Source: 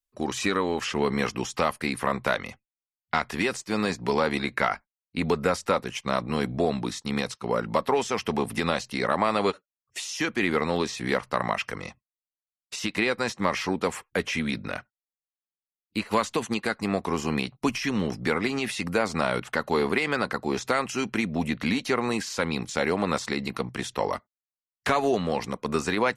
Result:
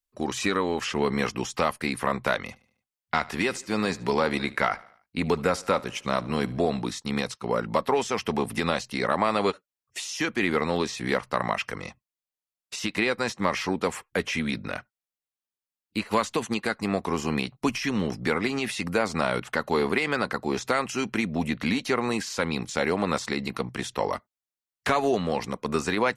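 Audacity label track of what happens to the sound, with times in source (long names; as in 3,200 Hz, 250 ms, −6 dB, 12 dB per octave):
2.450000	6.820000	repeating echo 74 ms, feedback 50%, level −21 dB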